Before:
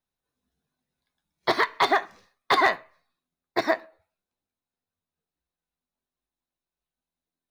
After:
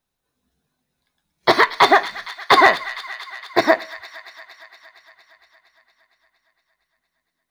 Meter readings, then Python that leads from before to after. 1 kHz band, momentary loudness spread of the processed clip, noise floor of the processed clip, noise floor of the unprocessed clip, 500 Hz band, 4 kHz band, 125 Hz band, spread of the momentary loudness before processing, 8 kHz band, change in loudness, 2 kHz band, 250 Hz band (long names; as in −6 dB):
+8.5 dB, 19 LU, −79 dBFS, below −85 dBFS, +8.5 dB, +9.0 dB, +8.5 dB, 10 LU, +9.0 dB, +8.0 dB, +9.0 dB, +8.5 dB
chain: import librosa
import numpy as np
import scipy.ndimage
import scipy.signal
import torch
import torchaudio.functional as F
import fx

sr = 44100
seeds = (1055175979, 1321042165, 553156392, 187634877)

y = fx.echo_wet_highpass(x, sr, ms=231, feedback_pct=72, hz=1600.0, wet_db=-13)
y = y * librosa.db_to_amplitude(8.5)